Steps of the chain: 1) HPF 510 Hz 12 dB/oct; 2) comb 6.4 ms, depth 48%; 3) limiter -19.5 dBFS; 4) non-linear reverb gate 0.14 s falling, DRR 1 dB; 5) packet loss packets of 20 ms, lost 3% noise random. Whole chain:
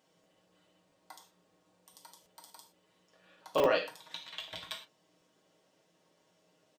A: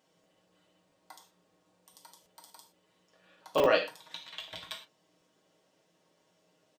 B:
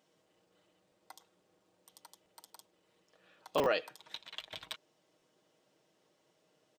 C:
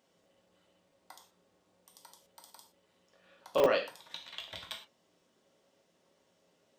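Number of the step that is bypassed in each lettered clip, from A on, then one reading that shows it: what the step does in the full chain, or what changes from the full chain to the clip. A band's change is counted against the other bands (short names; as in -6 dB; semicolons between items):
3, crest factor change +2.5 dB; 4, momentary loudness spread change +3 LU; 2, 500 Hz band +2.0 dB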